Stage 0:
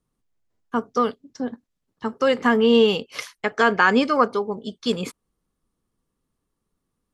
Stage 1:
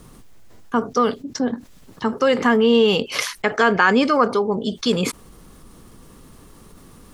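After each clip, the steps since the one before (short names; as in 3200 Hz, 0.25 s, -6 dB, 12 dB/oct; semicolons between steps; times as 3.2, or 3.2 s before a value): fast leveller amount 50%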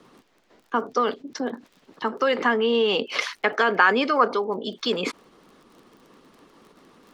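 harmonic-percussive split harmonic -5 dB; three-band isolator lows -23 dB, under 220 Hz, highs -20 dB, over 5100 Hz; crackle 29/s -42 dBFS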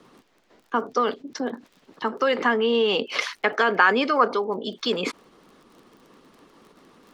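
nothing audible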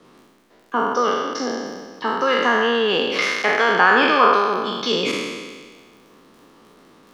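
spectral trails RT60 1.60 s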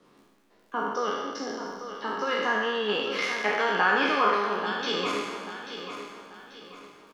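resonator bank C#2 sus4, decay 0.2 s; on a send: feedback echo 0.838 s, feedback 37%, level -10 dB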